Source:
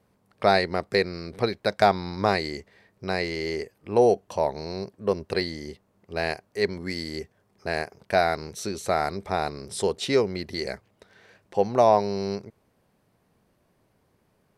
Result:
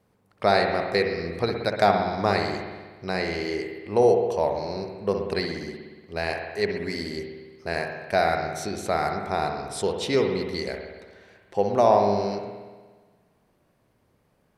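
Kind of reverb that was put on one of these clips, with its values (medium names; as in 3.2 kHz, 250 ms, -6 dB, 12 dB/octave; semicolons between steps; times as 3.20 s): spring tank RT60 1.4 s, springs 59 ms, chirp 75 ms, DRR 3 dB; trim -1 dB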